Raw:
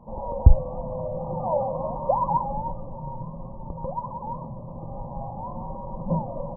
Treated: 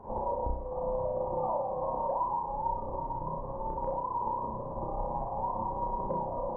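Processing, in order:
graphic EQ with 15 bands 160 Hz −10 dB, 400 Hz +9 dB, 1,000 Hz +8 dB
downward compressor 5 to 1, threshold −30 dBFS, peak gain reduction 20.5 dB
noise in a band 53–700 Hz −50 dBFS
amplitude tremolo 18 Hz, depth 59%
flutter between parallel walls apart 5.4 metres, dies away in 0.57 s

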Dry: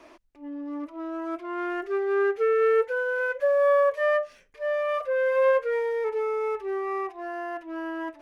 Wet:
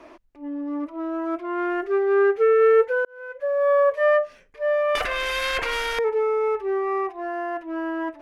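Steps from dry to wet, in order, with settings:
high-shelf EQ 2,900 Hz −8.5 dB
0:03.05–0:04.06: fade in
0:04.95–0:05.99: every bin compressed towards the loudest bin 10 to 1
level +5.5 dB

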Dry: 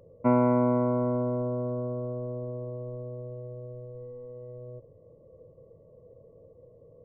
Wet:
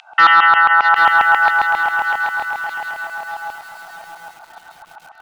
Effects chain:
elliptic high-pass filter 650 Hz, stop band 60 dB
auto-filter high-pass saw down 5.5 Hz 820–2,100 Hz
in parallel at −5 dB: sine wavefolder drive 6 dB, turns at −16.5 dBFS
on the sum: high-frequency loss of the air 180 metres
delay with a high-pass on its return 833 ms, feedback 62%, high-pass 1,900 Hz, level −18 dB
wrong playback speed 33 rpm record played at 45 rpm
boost into a limiter +26 dB
feedback echo at a low word length 781 ms, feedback 35%, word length 6 bits, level −7 dB
level −2.5 dB

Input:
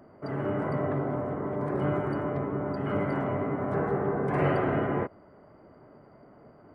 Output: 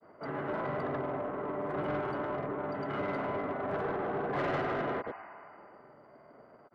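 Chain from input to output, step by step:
granular cloud 100 ms, grains 20 per second, pitch spread up and down by 0 semitones
mid-hump overdrive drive 16 dB, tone 3,200 Hz, clips at −17.5 dBFS
healed spectral selection 0:05.07–0:05.97, 650–3,000 Hz both
level −7 dB

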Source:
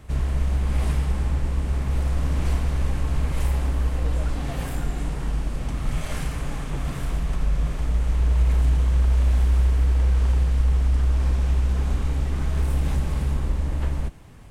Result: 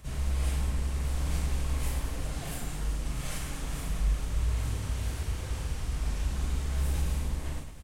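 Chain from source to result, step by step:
high-shelf EQ 3,200 Hz +11.5 dB
time stretch by phase vocoder 0.54×
on a send: reverse bouncing-ball delay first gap 40 ms, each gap 1.6×, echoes 5
on the sum: level −6.5 dB

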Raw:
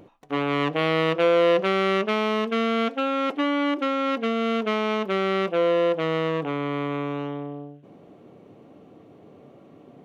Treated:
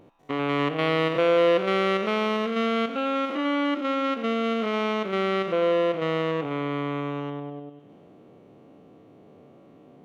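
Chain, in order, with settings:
spectrum averaged block by block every 100 ms
echo machine with several playback heads 98 ms, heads second and third, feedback 52%, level −22.5 dB
level −1 dB

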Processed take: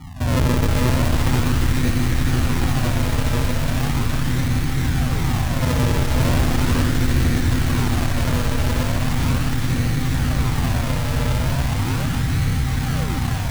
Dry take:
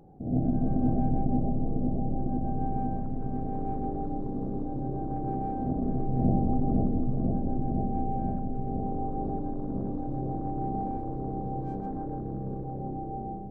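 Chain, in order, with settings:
sub-octave generator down 1 octave, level +1 dB
elliptic band-stop filter 260–710 Hz
low-shelf EQ 450 Hz +8 dB
in parallel at 0 dB: brickwall limiter −25 dBFS, peak gain reduction 20 dB
on the sum: soft clipping −20 dBFS, distortion −8 dB
notch comb filter 200 Hz
sample-and-hold swept by an LFO 41×, swing 100% 0.38 Hz
delay with a high-pass on its return 415 ms, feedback 80%, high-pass 1,400 Hz, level −3.5 dB
on a send at −9 dB: convolution reverb RT60 1.9 s, pre-delay 46 ms
on the sum: level +5.5 dB

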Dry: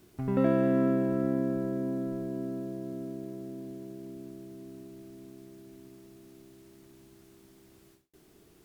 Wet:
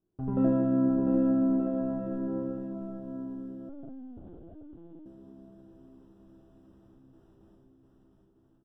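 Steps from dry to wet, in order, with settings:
noise gate with hold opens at −46 dBFS
moving average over 20 samples
bouncing-ball delay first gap 700 ms, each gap 0.75×, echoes 5
convolution reverb RT60 0.55 s, pre-delay 6 ms, DRR 2.5 dB
0:03.69–0:05.06: linear-prediction vocoder at 8 kHz pitch kept
level −2.5 dB

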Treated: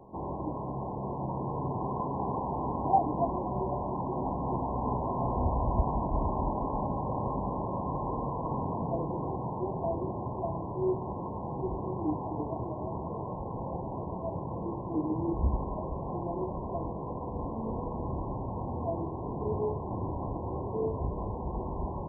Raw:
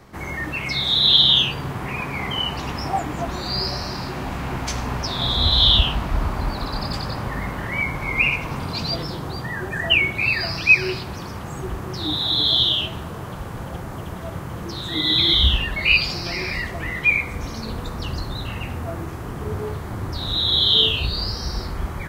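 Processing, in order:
linear-phase brick-wall low-pass 1,100 Hz
low-shelf EQ 150 Hz −11 dB

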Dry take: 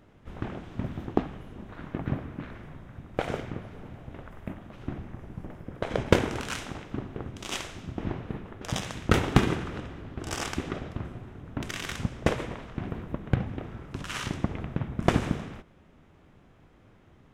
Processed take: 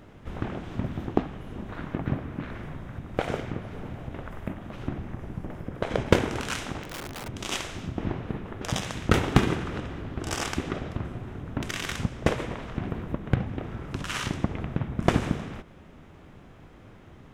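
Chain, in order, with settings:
in parallel at +3 dB: downward compressor 10 to 1, threshold −41 dBFS, peak gain reduction 28 dB
0:06.83–0:07.28: on the sum: wrap-around overflow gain 31.5 dB

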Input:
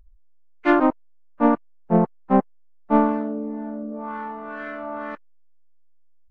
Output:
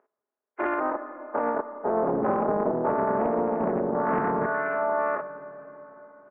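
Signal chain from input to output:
every bin's largest magnitude spread in time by 120 ms
high-pass filter 360 Hz 24 dB per octave
downward compressor 5 to 1, threshold −24 dBFS, peak gain reduction 11 dB
0:01.92–0:04.46: delay with pitch and tempo change per echo 106 ms, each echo −4 semitones, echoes 3
brickwall limiter −20 dBFS, peak gain reduction 6.5 dB
low-pass filter 1,600 Hz 24 dB per octave
comb filter 4.8 ms, depth 43%
comb and all-pass reverb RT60 4.7 s, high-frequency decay 0.6×, pre-delay 10 ms, DRR 11 dB
highs frequency-modulated by the lows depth 0.38 ms
level +3.5 dB

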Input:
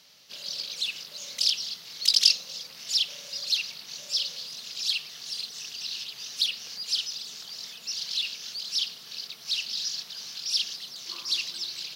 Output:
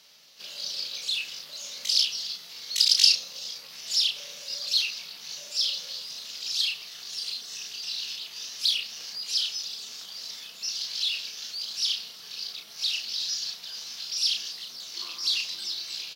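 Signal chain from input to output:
high-pass filter 250 Hz 6 dB per octave
tempo change 0.74×
double-tracking delay 33 ms −5 dB

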